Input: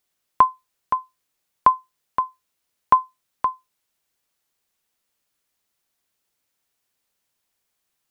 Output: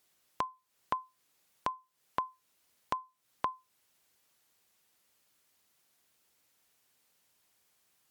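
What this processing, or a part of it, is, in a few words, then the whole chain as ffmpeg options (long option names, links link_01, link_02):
podcast mastering chain: -af "highpass=68,acompressor=threshold=-31dB:ratio=4,alimiter=limit=-18.5dB:level=0:latency=1:release=428,volume=4.5dB" -ar 44100 -c:a libmp3lame -b:a 96k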